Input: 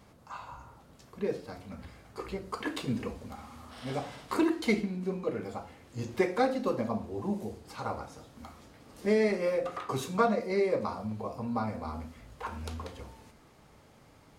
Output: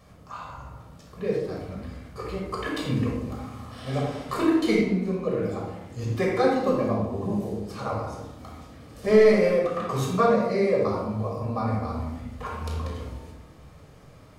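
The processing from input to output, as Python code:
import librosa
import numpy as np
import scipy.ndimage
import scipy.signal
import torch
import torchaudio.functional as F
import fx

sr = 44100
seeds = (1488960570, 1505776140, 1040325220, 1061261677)

y = fx.leveller(x, sr, passes=1, at=(9.04, 9.48))
y = fx.room_shoebox(y, sr, seeds[0], volume_m3=3400.0, walls='furnished', distance_m=6.0)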